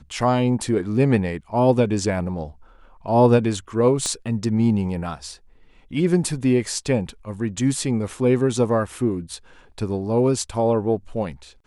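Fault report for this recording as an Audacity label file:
4.060000	4.060000	pop -12 dBFS

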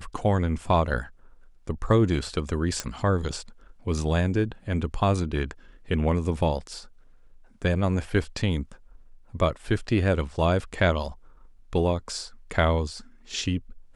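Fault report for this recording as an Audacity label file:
2.800000	2.800000	pop -12 dBFS

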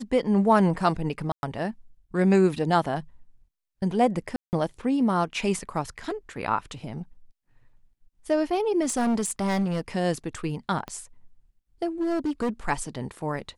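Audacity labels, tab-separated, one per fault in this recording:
1.320000	1.430000	gap 0.111 s
4.360000	4.530000	gap 0.169 s
8.810000	9.810000	clipped -21 dBFS
10.880000	10.880000	pop -22 dBFS
12.010000	12.500000	clipped -22.5 dBFS

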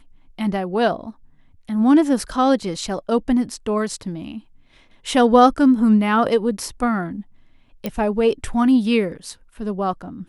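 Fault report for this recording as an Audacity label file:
7.860000	7.860000	pop -11 dBFS

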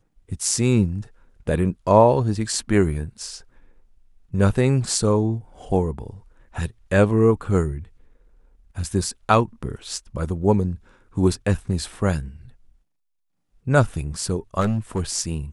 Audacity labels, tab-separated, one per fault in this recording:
14.600000	15.010000	clipped -17 dBFS

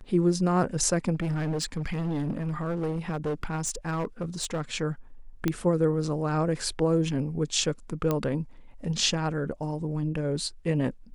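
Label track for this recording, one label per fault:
1.140000	4.620000	clipped -25 dBFS
5.480000	5.480000	pop -12 dBFS
8.110000	8.110000	pop -13 dBFS

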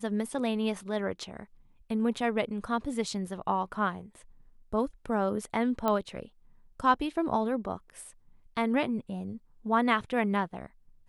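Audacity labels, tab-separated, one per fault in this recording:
5.880000	5.880000	pop -15 dBFS

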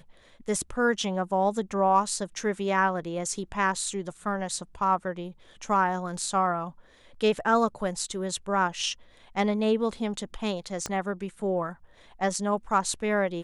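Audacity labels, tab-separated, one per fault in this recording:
10.860000	10.860000	pop -16 dBFS

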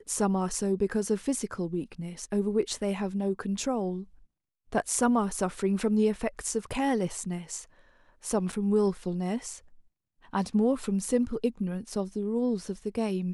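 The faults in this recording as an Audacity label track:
8.520000	8.530000	gap 6.7 ms

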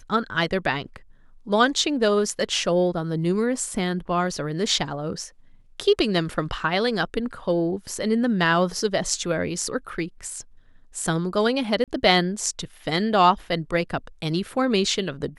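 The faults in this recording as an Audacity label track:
11.840000	11.880000	gap 37 ms

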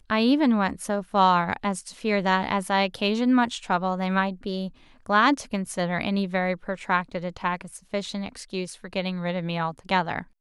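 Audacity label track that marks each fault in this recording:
5.660000	5.660000	gap 3.8 ms

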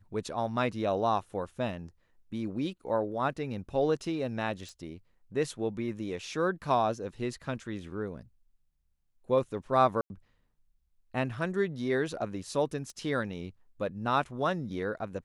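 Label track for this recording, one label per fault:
4.690000	4.690000	pop
10.010000	10.100000	gap 91 ms
12.900000	12.900000	pop -31 dBFS

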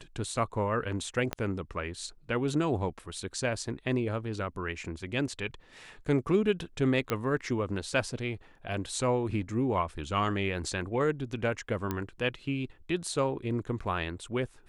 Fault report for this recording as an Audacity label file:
1.330000	1.330000	pop -15 dBFS
7.100000	7.100000	pop -14 dBFS
11.910000	11.910000	pop -17 dBFS

